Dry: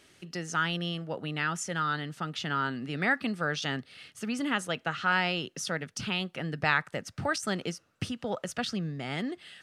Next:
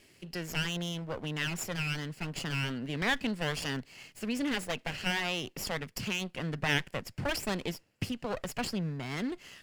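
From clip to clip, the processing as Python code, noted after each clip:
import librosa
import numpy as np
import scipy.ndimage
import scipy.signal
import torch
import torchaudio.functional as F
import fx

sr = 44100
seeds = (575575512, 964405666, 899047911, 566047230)

y = fx.lower_of_two(x, sr, delay_ms=0.4)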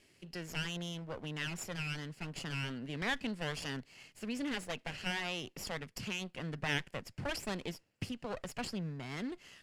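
y = scipy.signal.sosfilt(scipy.signal.butter(2, 12000.0, 'lowpass', fs=sr, output='sos'), x)
y = y * librosa.db_to_amplitude(-5.5)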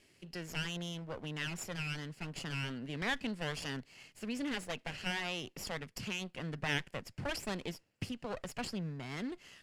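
y = x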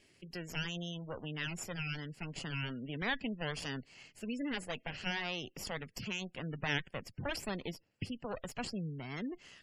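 y = fx.spec_gate(x, sr, threshold_db=-25, keep='strong')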